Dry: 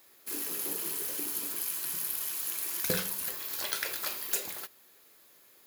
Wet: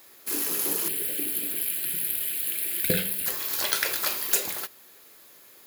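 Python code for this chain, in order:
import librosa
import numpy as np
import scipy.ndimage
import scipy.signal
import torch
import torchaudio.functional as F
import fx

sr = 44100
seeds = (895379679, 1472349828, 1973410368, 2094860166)

y = fx.fixed_phaser(x, sr, hz=2600.0, stages=4, at=(0.88, 3.26))
y = y * 10.0 ** (7.5 / 20.0)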